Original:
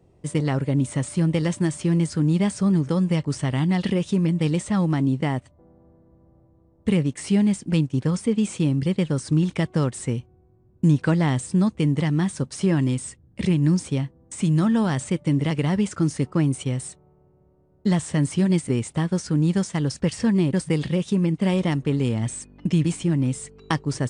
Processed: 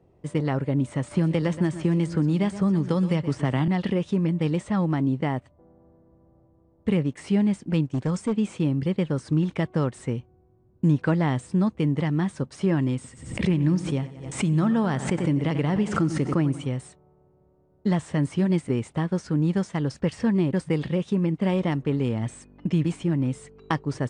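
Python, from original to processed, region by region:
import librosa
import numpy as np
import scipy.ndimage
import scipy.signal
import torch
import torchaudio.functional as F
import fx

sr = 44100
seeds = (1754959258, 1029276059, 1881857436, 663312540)

y = fx.chain(x, sr, fx.echo_single(ms=122, db=-15.0),
    fx.band_squash(depth_pct=100), at=(1.11, 3.68))
y = fx.chain(y, sr, fx.overload_stage(gain_db=17.0),
    fx.lowpass_res(hz=7900.0, q=3.0), at=(7.91, 8.33))
y = fx.chain(y, sr, fx.echo_feedback(ms=91, feedback_pct=53, wet_db=-14.5),
    fx.pre_swell(db_per_s=74.0), at=(12.95, 16.66))
y = fx.lowpass(y, sr, hz=1600.0, slope=6)
y = fx.low_shelf(y, sr, hz=320.0, db=-5.5)
y = F.gain(torch.from_numpy(y), 1.5).numpy()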